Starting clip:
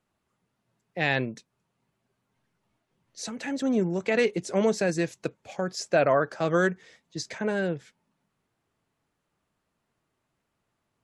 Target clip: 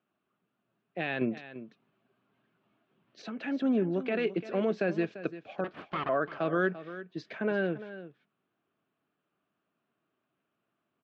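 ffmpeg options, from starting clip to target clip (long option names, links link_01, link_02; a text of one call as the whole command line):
ffmpeg -i in.wav -filter_complex "[0:a]alimiter=limit=-16.5dB:level=0:latency=1:release=113,asettb=1/sr,asplit=3[link_01][link_02][link_03];[link_01]atrim=end=1.214[link_04];[link_02]atrim=start=1.21:end=3.22,asetpts=PTS-STARTPTS,afade=type=in:duration=0.004:curve=qsin,afade=type=out:start_time=2.006:duration=0.004:curve=qsin,acontrast=52[link_05];[link_03]atrim=start=3.216[link_06];[link_04][link_05]acrossfade=duration=0.004:curve1=hsin:curve2=qsin[link_07];[link_07][link_06]acrossfade=duration=0.004:curve1=qsin:curve2=hsin,asettb=1/sr,asplit=3[link_08][link_09][link_10];[link_08]atrim=end=5.644[link_11];[link_09]atrim=start=5.64:end=6.09,asetpts=PTS-STARTPTS,afade=type=in:duration=0.004:curve=qsin,afade=type=out:start_time=0.446:duration=0.004:curve=qsin,aeval=exprs='abs(val(0))':channel_layout=same[link_12];[link_10]atrim=start=6.086[link_13];[link_11][link_12]acrossfade=duration=0.004:curve1=hsin:curve2=qsin[link_14];[link_14][link_13]acrossfade=duration=0.004:curve1=qsin:curve2=hsin,highpass=220,equalizer=frequency=500:width_type=q:width=4:gain=-6,equalizer=frequency=900:width_type=q:width=4:gain=-9,equalizer=frequency=2000:width_type=q:width=4:gain=-9,lowpass=frequency=3000:width=0.5412,lowpass=frequency=3000:width=1.3066,aecho=1:1:343:0.2,volume=1dB" out.wav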